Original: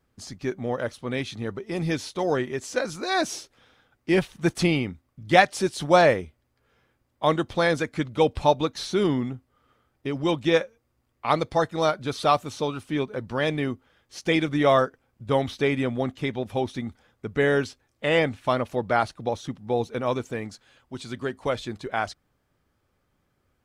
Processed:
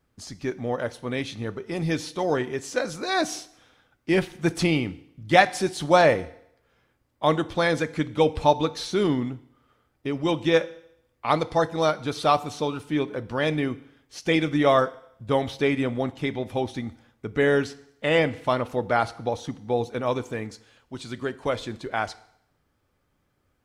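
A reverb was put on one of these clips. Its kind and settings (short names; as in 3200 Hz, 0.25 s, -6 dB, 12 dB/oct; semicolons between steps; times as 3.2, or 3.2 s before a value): FDN reverb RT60 0.72 s, low-frequency decay 0.9×, high-frequency decay 1×, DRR 14 dB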